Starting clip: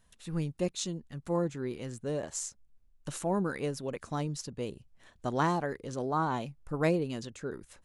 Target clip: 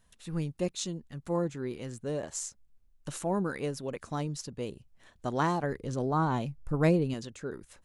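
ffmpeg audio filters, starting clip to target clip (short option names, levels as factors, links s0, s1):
-filter_complex "[0:a]asettb=1/sr,asplit=3[s0][s1][s2];[s0]atrim=end=5.634[s3];[s1]atrim=start=5.63:end=7.14,asetpts=PTS-STARTPTS,afade=t=in:d=0.004:c=qsin,afade=t=out:st=1.506:d=0.004:c=qsin,lowshelf=f=210:g=9.5[s4];[s2]atrim=start=7.136[s5];[s3][s4]acrossfade=d=0.004:c1=hsin:c2=qsin[s6];[s6][s5]acrossfade=d=0.004:c1=qsin:c2=hsin"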